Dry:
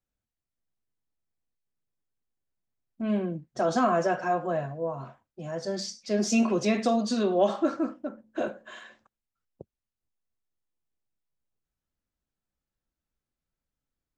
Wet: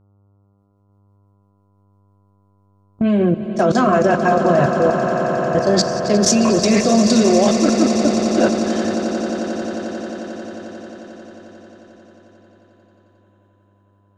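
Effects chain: rotary speaker horn 6 Hz; AGC gain up to 15 dB; buzz 100 Hz, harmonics 14, -44 dBFS -8 dB/oct; level quantiser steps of 21 dB; swelling echo 89 ms, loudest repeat 8, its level -13 dB; gain +6.5 dB

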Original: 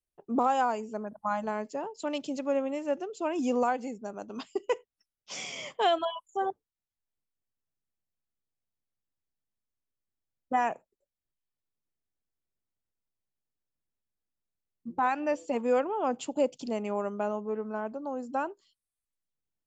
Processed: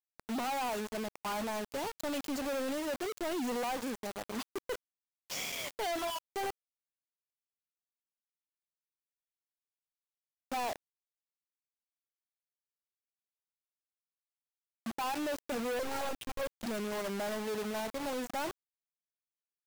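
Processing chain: 15.79–16.64 monotone LPC vocoder at 8 kHz 270 Hz; vibrato 2.2 Hz 39 cents; companded quantiser 2-bit; gain -8.5 dB

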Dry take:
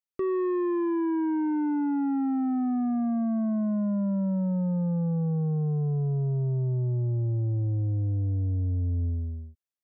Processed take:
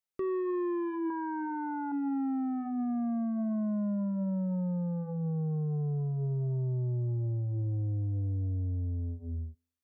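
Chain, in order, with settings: de-hum 84.57 Hz, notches 13; 1.1–1.92 band shelf 1100 Hz +13 dB; limiter -29 dBFS, peak gain reduction 12 dB

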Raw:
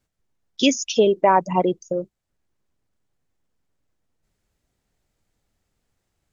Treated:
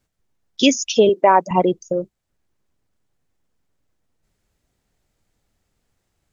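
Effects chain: 1.09–1.51 HPF 250 Hz; gain +3 dB

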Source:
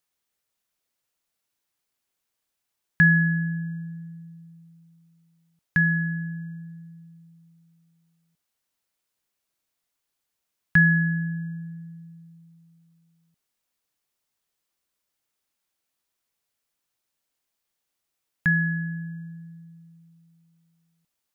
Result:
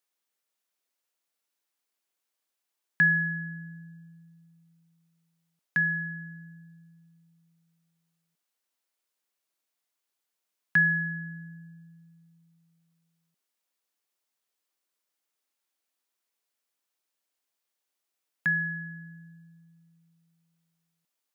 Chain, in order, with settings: HPF 260 Hz 12 dB/oct; gain -3 dB

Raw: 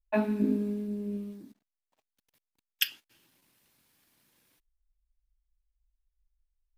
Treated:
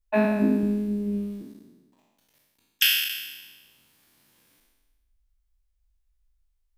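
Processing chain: spectral trails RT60 1.24 s; 0.63–1.43 low shelf 180 Hz +9 dB; gain +3 dB

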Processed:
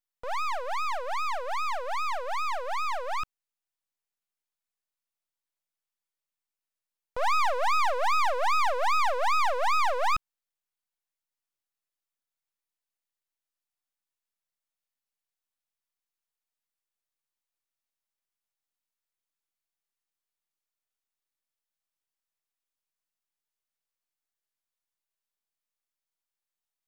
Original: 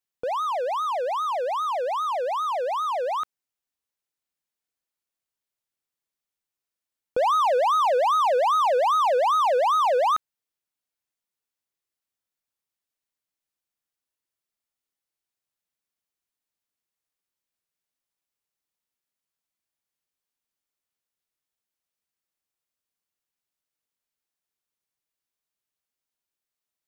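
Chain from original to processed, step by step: Chebyshev high-pass 760 Hz, order 2; half-wave rectifier; gain +1 dB

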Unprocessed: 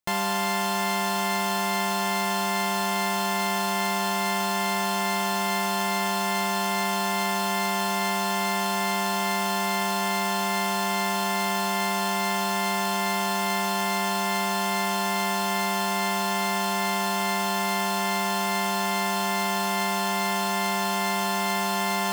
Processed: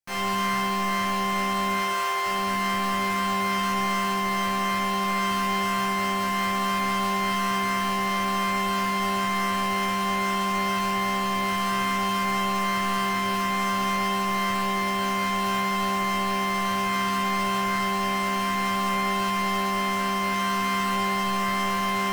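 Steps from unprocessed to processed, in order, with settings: octaver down 1 oct, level +2 dB; notch 3600 Hz, Q 5.7; sine folder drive 13 dB, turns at -12 dBFS; 1.76–2.26 brick-wall FIR high-pass 320 Hz; resonator bank C3 sus4, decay 0.61 s; reverb RT60 1.1 s, pre-delay 6 ms, DRR 6 dB

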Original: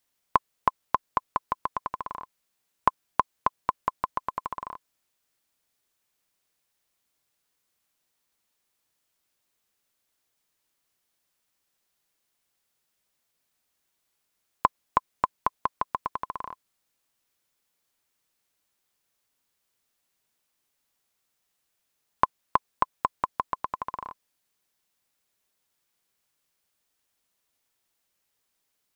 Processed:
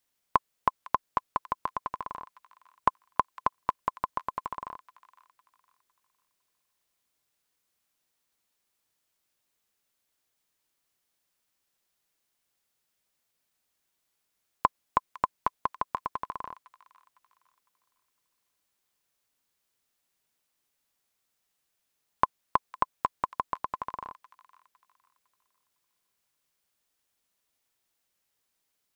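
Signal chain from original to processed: thin delay 0.506 s, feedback 31%, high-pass 1800 Hz, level -13 dB; gain -2 dB

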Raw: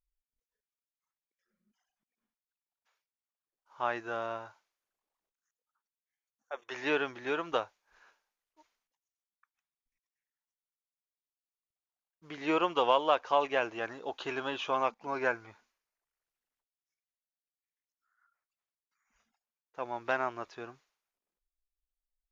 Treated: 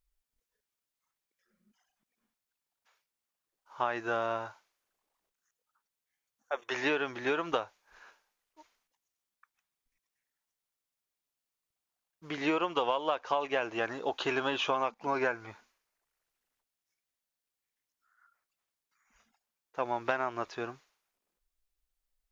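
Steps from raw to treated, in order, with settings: compressor 10:1, threshold -32 dBFS, peak gain reduction 12.5 dB; gain +6.5 dB

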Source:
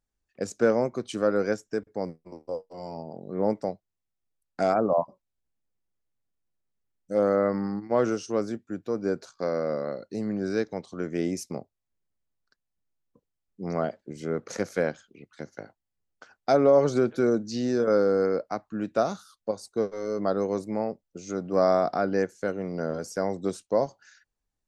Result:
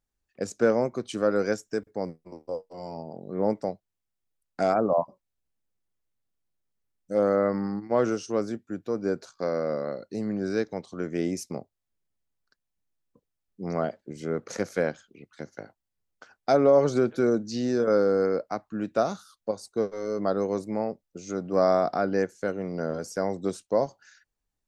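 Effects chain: 1.31–1.91 high shelf 4500 Hz +6.5 dB

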